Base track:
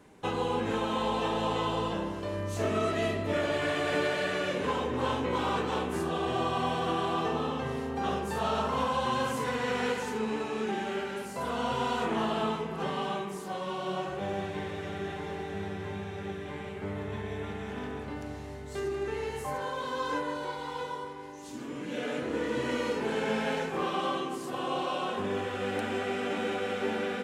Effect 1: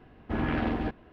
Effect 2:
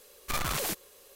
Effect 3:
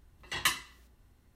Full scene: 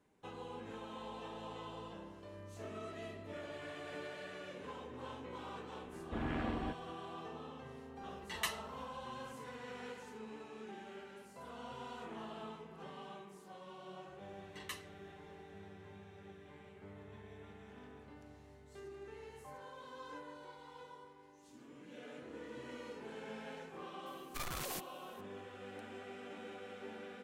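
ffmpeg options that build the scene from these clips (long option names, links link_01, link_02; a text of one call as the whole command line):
ffmpeg -i bed.wav -i cue0.wav -i cue1.wav -i cue2.wav -filter_complex "[3:a]asplit=2[link_01][link_02];[0:a]volume=-17.5dB[link_03];[1:a]atrim=end=1.12,asetpts=PTS-STARTPTS,volume=-10dB,afade=type=in:duration=0.004:curve=hsin,afade=type=out:start_time=1.116:duration=0.004:curve=hsin,adelay=5820[link_04];[link_01]atrim=end=1.35,asetpts=PTS-STARTPTS,volume=-9.5dB,afade=type=in:duration=0.004:curve=hsin,afade=type=out:start_time=1.346:duration=0.004:curve=hsin,adelay=7980[link_05];[link_02]atrim=end=1.35,asetpts=PTS-STARTPTS,volume=-17.5dB,afade=type=in:duration=0.004:curve=hsin,afade=type=out:start_time=1.346:duration=0.004:curve=hsin,adelay=14240[link_06];[2:a]atrim=end=1.15,asetpts=PTS-STARTPTS,volume=-11dB,afade=type=in:duration=0.004:curve=hsin,afade=type=out:start_time=1.146:duration=0.004:curve=hsin,adelay=24060[link_07];[link_03][link_04][link_05][link_06][link_07]amix=inputs=5:normalize=0" out.wav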